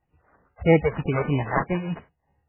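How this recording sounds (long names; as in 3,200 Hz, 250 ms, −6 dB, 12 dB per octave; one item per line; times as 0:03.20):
phaser sweep stages 12, 3.1 Hz, lowest notch 250–1,400 Hz
aliases and images of a low sample rate 2,700 Hz, jitter 0%
sample-and-hold tremolo
MP3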